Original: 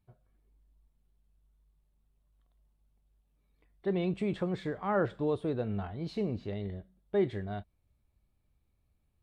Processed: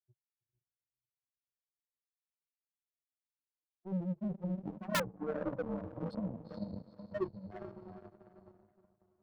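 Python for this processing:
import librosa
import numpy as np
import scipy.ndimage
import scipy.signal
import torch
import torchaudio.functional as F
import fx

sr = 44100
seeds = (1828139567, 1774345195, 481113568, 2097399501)

p1 = fx.rotary_switch(x, sr, hz=7.0, then_hz=1.0, switch_at_s=5.81)
p2 = fx.hum_notches(p1, sr, base_hz=50, count=9)
p3 = fx.notch_comb(p2, sr, f0_hz=410.0)
p4 = fx.echo_feedback(p3, sr, ms=319, feedback_pct=33, wet_db=-14.0)
p5 = (np.mod(10.0 ** (30.5 / 20.0) * p4 + 1.0, 2.0) - 1.0) / 10.0 ** (30.5 / 20.0)
p6 = p4 + (p5 * 10.0 ** (-9.0 / 20.0))
p7 = fx.low_shelf(p6, sr, hz=69.0, db=-11.5)
p8 = fx.spec_topn(p7, sr, count=2)
p9 = fx.high_shelf(p8, sr, hz=3200.0, db=10.5)
p10 = fx.echo_diffused(p9, sr, ms=458, feedback_pct=48, wet_db=-6.0)
p11 = fx.power_curve(p10, sr, exponent=2.0)
p12 = (np.mod(10.0 ** (30.5 / 20.0) * p11 + 1.0, 2.0) - 1.0) / 10.0 ** (30.5 / 20.0)
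p13 = fx.band_squash(p12, sr, depth_pct=40)
y = p13 * 10.0 ** (9.0 / 20.0)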